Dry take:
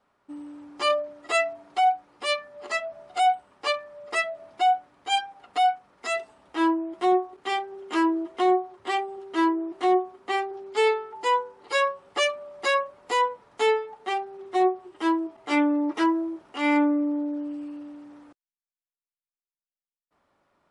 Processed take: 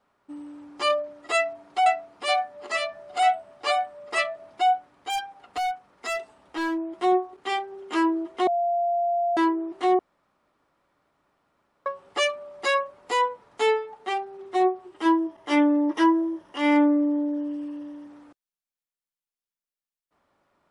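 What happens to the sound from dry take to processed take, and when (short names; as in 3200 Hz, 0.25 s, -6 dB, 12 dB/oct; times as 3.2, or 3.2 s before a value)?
1.35–4.36 echo 0.51 s -5.5 dB
5.1–6.78 overloaded stage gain 24 dB
8.47–9.37 bleep 693 Hz -21 dBFS
9.99–11.86 room tone
15.05–18.07 ripple EQ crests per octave 1.2, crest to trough 7 dB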